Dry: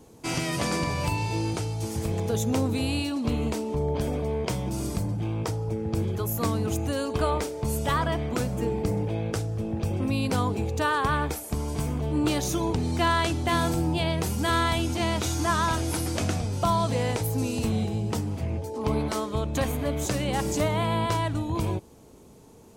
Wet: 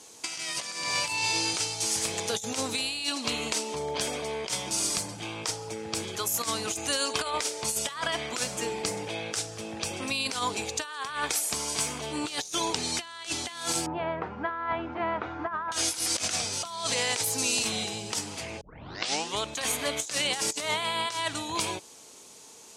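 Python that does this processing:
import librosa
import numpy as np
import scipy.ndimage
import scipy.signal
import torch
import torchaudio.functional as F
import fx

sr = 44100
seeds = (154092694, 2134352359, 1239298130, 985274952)

y = fx.lowpass(x, sr, hz=1500.0, slope=24, at=(13.86, 15.72))
y = fx.edit(y, sr, fx.tape_start(start_s=18.61, length_s=0.8), tone=tone)
y = fx.weighting(y, sr, curve='ITU-R 468')
y = fx.over_compress(y, sr, threshold_db=-29.0, ratio=-0.5)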